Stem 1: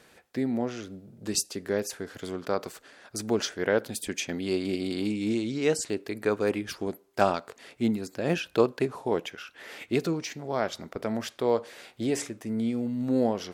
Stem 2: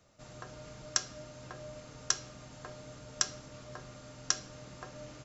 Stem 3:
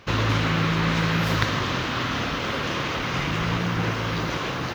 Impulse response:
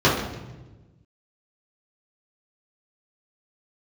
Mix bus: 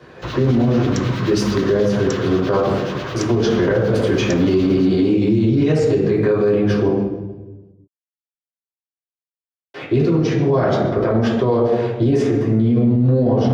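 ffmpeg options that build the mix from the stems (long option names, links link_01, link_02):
-filter_complex "[0:a]aemphasis=mode=reproduction:type=75kf,volume=-0.5dB,asplit=3[link_01][link_02][link_03];[link_01]atrim=end=6.88,asetpts=PTS-STARTPTS,afade=type=out:start_time=6.876:duration=0.004:curve=hsin[link_04];[link_02]atrim=start=6.88:end=9.74,asetpts=PTS-STARTPTS,volume=0[link_05];[link_03]atrim=start=9.74,asetpts=PTS-STARTPTS,afade=type=in:duration=0.004:curve=hsin[link_06];[link_04][link_05][link_06]concat=n=3:v=0:a=1,asplit=2[link_07][link_08];[link_08]volume=-4.5dB[link_09];[1:a]volume=-3dB[link_10];[2:a]acrossover=split=1700[link_11][link_12];[link_11]aeval=exprs='val(0)*(1-0.7/2+0.7/2*cos(2*PI*9.3*n/s))':channel_layout=same[link_13];[link_12]aeval=exprs='val(0)*(1-0.7/2-0.7/2*cos(2*PI*9.3*n/s))':channel_layout=same[link_14];[link_13][link_14]amix=inputs=2:normalize=0,adelay=150,volume=-2.5dB,asplit=2[link_15][link_16];[link_16]volume=-24dB[link_17];[3:a]atrim=start_sample=2205[link_18];[link_09][link_17]amix=inputs=2:normalize=0[link_19];[link_19][link_18]afir=irnorm=-1:irlink=0[link_20];[link_07][link_10][link_15][link_20]amix=inputs=4:normalize=0,equalizer=frequency=250:width_type=o:width=0.77:gain=-2.5,acrossover=split=160|3000[link_21][link_22][link_23];[link_22]acompressor=threshold=-10dB:ratio=6[link_24];[link_21][link_24][link_23]amix=inputs=3:normalize=0,alimiter=limit=-8.5dB:level=0:latency=1:release=32"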